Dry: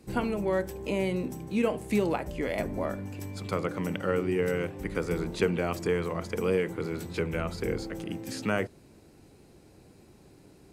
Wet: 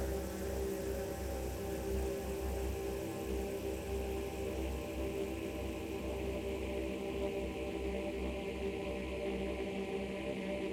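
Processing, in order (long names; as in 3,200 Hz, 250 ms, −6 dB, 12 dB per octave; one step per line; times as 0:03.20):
reversed playback
downward compressor, threshold −42 dBFS, peak gain reduction 20.5 dB
reversed playback
brickwall limiter −39.5 dBFS, peak gain reduction 10 dB
multi-voice chorus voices 4, 0.28 Hz, delay 12 ms, depth 3.2 ms
extreme stretch with random phases 49×, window 0.50 s, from 0:00.73
highs frequency-modulated by the lows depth 0.39 ms
level +13.5 dB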